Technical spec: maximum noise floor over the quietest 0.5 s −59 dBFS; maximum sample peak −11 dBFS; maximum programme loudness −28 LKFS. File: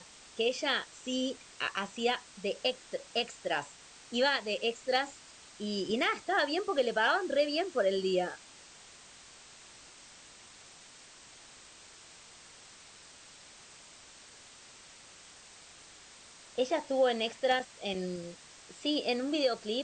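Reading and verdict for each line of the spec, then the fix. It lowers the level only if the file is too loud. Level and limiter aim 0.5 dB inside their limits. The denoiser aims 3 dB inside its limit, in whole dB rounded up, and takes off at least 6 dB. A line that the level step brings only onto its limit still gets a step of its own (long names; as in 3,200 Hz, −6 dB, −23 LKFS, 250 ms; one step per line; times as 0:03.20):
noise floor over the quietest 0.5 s −54 dBFS: out of spec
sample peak −17.5 dBFS: in spec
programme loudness −32.0 LKFS: in spec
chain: broadband denoise 8 dB, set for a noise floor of −54 dBFS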